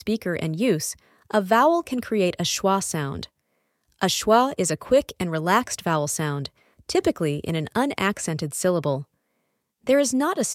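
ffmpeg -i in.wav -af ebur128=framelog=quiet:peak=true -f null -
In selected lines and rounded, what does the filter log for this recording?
Integrated loudness:
  I:         -23.1 LUFS
  Threshold: -33.5 LUFS
Loudness range:
  LRA:         2.6 LU
  Threshold: -43.8 LUFS
  LRA low:   -25.5 LUFS
  LRA high:  -22.9 LUFS
True peak:
  Peak:       -4.2 dBFS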